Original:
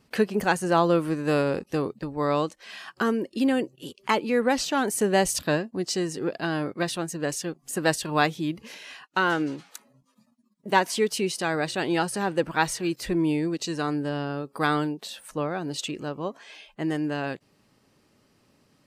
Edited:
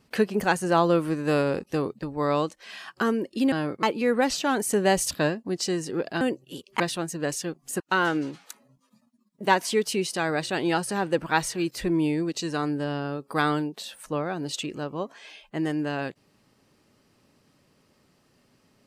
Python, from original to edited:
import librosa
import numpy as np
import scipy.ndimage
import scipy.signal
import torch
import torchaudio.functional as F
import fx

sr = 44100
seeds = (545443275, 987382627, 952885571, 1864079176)

y = fx.edit(x, sr, fx.swap(start_s=3.52, length_s=0.59, other_s=6.49, other_length_s=0.31),
    fx.cut(start_s=7.8, length_s=1.25), tone=tone)